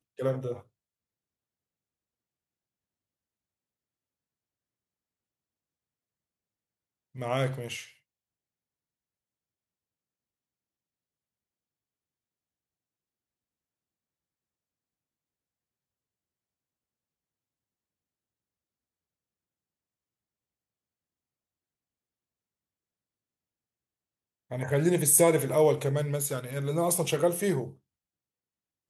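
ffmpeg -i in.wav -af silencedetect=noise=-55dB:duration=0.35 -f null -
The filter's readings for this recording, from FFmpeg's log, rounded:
silence_start: 0.63
silence_end: 7.15 | silence_duration: 6.52
silence_start: 7.96
silence_end: 24.50 | silence_duration: 16.55
silence_start: 27.77
silence_end: 28.90 | silence_duration: 1.13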